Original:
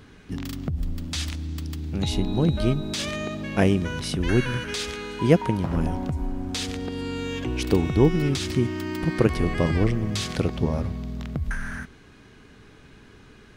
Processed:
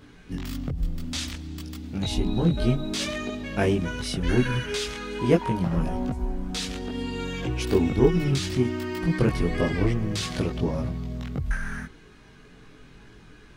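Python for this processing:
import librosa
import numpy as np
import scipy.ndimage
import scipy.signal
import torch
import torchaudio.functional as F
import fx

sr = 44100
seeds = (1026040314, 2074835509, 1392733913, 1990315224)

p1 = np.clip(x, -10.0 ** (-21.5 / 20.0), 10.0 ** (-21.5 / 20.0))
p2 = x + (p1 * 10.0 ** (-10.0 / 20.0))
y = fx.chorus_voices(p2, sr, voices=6, hz=0.28, base_ms=20, depth_ms=4.0, mix_pct=50)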